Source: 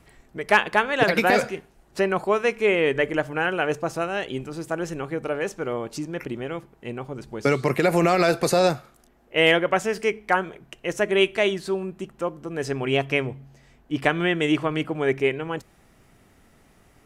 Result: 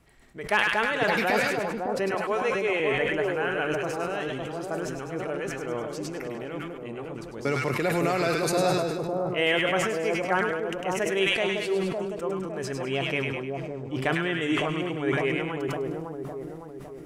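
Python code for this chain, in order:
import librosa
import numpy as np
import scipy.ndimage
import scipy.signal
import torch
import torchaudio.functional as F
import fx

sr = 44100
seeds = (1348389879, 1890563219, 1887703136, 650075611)

p1 = fx.highpass(x, sr, hz=310.0, slope=24, at=(2.11, 2.8))
p2 = p1 + fx.echo_split(p1, sr, split_hz=1100.0, low_ms=558, high_ms=102, feedback_pct=52, wet_db=-3.5, dry=0)
p3 = fx.sustainer(p2, sr, db_per_s=30.0)
y = p3 * librosa.db_to_amplitude(-7.0)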